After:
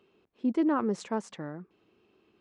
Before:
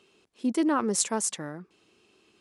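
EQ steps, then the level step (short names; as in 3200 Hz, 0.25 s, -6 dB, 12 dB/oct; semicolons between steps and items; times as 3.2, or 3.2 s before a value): tape spacing loss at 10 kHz 31 dB; 0.0 dB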